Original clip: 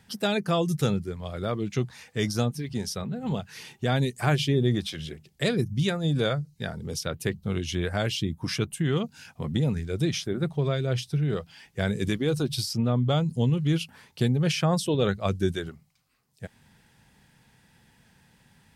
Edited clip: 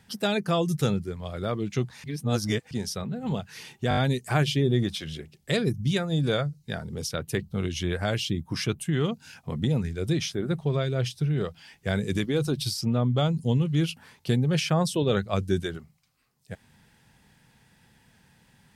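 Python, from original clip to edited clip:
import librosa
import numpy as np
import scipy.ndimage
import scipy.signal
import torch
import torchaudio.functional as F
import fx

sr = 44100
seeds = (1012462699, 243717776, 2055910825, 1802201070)

y = fx.edit(x, sr, fx.reverse_span(start_s=2.04, length_s=0.67),
    fx.stutter(start_s=3.89, slice_s=0.02, count=5), tone=tone)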